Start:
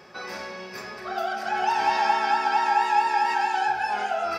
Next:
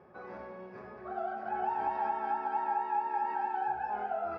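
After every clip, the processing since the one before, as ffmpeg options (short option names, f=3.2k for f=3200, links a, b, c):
-af "lowpass=1k,equalizer=f=77:w=1.7:g=5,alimiter=limit=-17dB:level=0:latency=1:release=215,volume=-6dB"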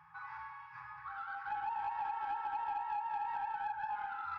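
-filter_complex "[0:a]afftfilt=real='re*(1-between(b*sr/4096,170,790))':imag='im*(1-between(b*sr/4096,170,790))':win_size=4096:overlap=0.75,acompressor=threshold=-37dB:ratio=4,asplit=2[a][b];[b]highpass=f=720:p=1,volume=11dB,asoftclip=type=tanh:threshold=-28.5dB[c];[a][c]amix=inputs=2:normalize=0,lowpass=f=2.4k:p=1,volume=-6dB,volume=-1dB"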